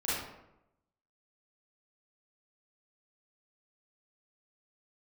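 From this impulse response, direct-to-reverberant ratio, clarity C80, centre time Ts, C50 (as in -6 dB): -10.5 dB, 2.5 dB, 79 ms, -2.5 dB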